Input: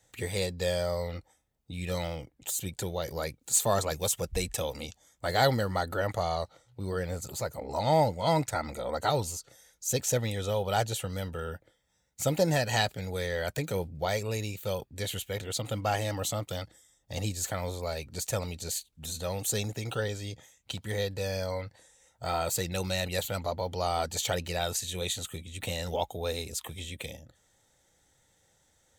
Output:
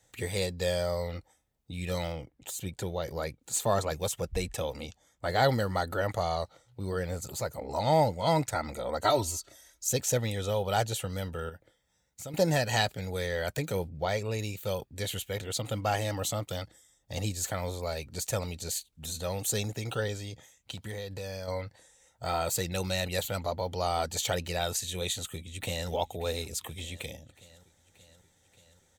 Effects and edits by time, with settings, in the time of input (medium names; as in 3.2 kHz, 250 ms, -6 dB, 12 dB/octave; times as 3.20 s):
2.12–5.49 s: treble shelf 4.3 kHz -7.5 dB
9.04–9.89 s: comb 3.1 ms, depth 95%
11.49–12.34 s: compression 2.5:1, threshold -44 dBFS
13.89–14.39 s: treble shelf 7.5 kHz -11 dB
20.18–21.48 s: compression, threshold -34 dBFS
25.06–25.89 s: echo throw 580 ms, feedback 70%, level -17 dB